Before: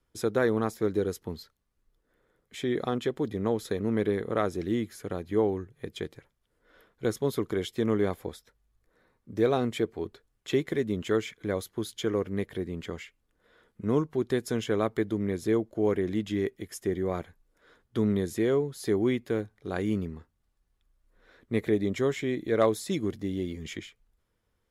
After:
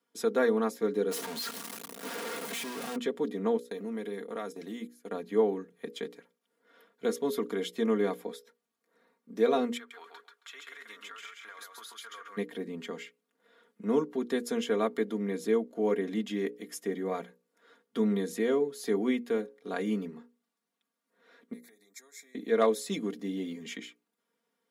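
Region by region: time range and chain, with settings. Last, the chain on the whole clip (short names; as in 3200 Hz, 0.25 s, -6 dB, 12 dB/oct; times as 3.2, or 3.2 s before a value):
1.11–2.96 infinite clipping + bell 10000 Hz +3 dB 0.3 oct
3.57–5.11 gate -37 dBFS, range -21 dB + high shelf 5700 Hz +10 dB + compressor 2:1, threshold -37 dBFS
9.77–12.37 resonant high-pass 1300 Hz, resonance Q 3.5 + compressor 10:1, threshold -42 dBFS + feedback echo 0.136 s, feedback 17%, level -3 dB
21.53–22.35 Butterworth band-stop 2900 Hz, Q 1.8 + compressor 5:1, threshold -33 dBFS + differentiator
whole clip: HPF 200 Hz 24 dB/oct; notches 60/120/180/240/300/360/420/480/540 Hz; comb 4.3 ms, depth 72%; gain -2.5 dB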